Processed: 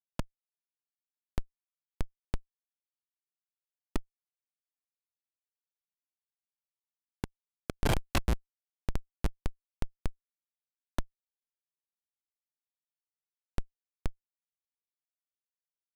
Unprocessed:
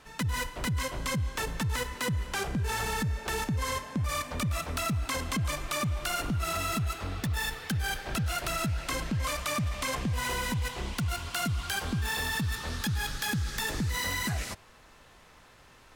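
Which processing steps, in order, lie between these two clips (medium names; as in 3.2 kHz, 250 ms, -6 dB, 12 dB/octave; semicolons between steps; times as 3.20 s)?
compression 2:1, threshold -38 dBFS, peak gain reduction 6.5 dB; 7.75–8.34 s: graphic EQ 250/500/1000/2000/4000/8000 Hz -8/-10/-3/+7/+10/+4 dB; feedback delay 1094 ms, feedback 53%, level -10 dB; Schmitt trigger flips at -25.5 dBFS; resampled via 32 kHz; trim +13 dB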